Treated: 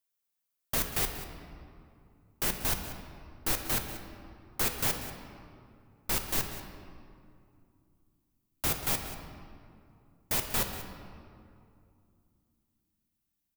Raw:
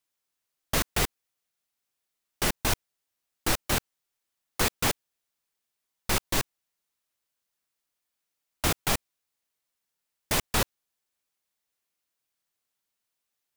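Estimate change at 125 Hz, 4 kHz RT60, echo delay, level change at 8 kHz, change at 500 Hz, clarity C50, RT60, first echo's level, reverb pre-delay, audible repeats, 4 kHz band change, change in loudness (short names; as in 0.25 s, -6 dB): -5.0 dB, 1.4 s, 0.188 s, -3.5 dB, -6.0 dB, 6.0 dB, 2.5 s, -14.0 dB, 8 ms, 1, -5.5 dB, -3.0 dB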